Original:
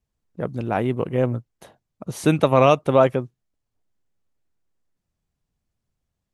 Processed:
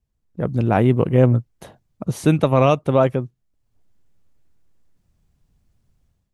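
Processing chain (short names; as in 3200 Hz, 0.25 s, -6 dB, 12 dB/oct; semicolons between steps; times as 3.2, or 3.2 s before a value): low shelf 230 Hz +8.5 dB; AGC gain up to 11 dB; gain -2.5 dB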